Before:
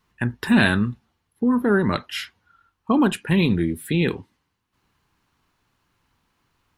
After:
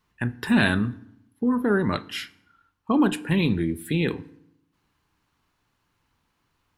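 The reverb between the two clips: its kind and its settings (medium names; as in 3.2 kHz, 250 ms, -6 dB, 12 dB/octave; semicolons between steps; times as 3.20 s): FDN reverb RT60 0.76 s, low-frequency decay 1.3×, high-frequency decay 0.7×, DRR 15.5 dB; trim -3 dB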